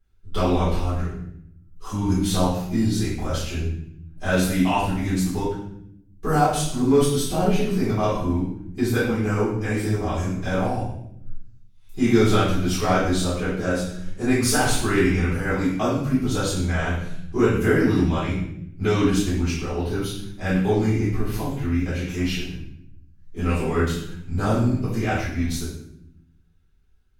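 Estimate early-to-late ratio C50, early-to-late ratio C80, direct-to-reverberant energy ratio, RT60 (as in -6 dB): 1.5 dB, 5.5 dB, -12.0 dB, 0.75 s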